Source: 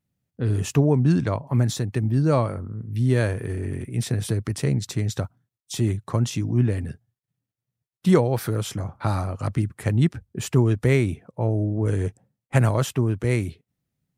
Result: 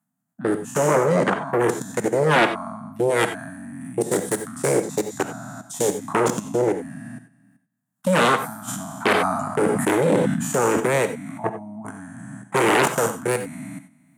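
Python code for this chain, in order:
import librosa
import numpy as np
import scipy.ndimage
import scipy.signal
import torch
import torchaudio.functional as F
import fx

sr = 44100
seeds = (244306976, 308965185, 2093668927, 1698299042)

y = fx.spec_trails(x, sr, decay_s=1.09)
y = scipy.signal.sosfilt(scipy.signal.cheby1(4, 1.0, [280.0, 650.0], 'bandstop', fs=sr, output='sos'), y)
y = fx.level_steps(y, sr, step_db=22)
y = fx.band_shelf(y, sr, hz=3400.0, db=-14.0, octaves=1.7)
y = fx.fold_sine(y, sr, drive_db=12, ceiling_db=-12.0)
y = scipy.signal.sosfilt(scipy.signal.butter(4, 190.0, 'highpass', fs=sr, output='sos'), y)
y = fx.high_shelf(y, sr, hz=11000.0, db=-4.0)
y = fx.rev_gated(y, sr, seeds[0], gate_ms=110, shape='rising', drr_db=9.5)
y = fx.sustainer(y, sr, db_per_s=32.0, at=(8.67, 10.79), fade=0.02)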